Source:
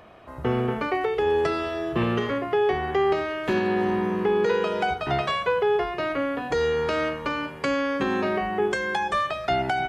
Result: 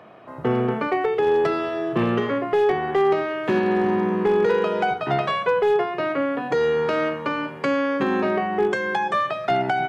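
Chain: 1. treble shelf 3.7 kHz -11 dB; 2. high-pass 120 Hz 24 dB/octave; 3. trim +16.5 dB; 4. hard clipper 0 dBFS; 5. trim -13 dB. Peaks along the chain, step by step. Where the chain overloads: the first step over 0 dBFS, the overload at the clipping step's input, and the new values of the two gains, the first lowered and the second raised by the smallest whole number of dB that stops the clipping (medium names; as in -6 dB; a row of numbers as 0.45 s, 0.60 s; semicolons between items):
-13.5 dBFS, -12.5 dBFS, +4.0 dBFS, 0.0 dBFS, -13.0 dBFS; step 3, 4.0 dB; step 3 +12.5 dB, step 5 -9 dB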